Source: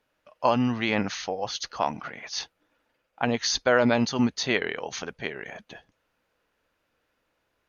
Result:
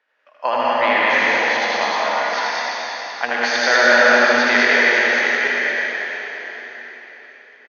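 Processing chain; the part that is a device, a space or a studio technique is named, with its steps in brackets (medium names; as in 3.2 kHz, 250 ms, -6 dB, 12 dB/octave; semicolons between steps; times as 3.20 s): station announcement (band-pass 500–4500 Hz; peaking EQ 1.8 kHz +11 dB 0.52 oct; loudspeakers at several distances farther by 27 m -2 dB, 51 m -10 dB, 69 m -2 dB; reverberation RT60 4.5 s, pre-delay 92 ms, DRR -5 dB); trim +1 dB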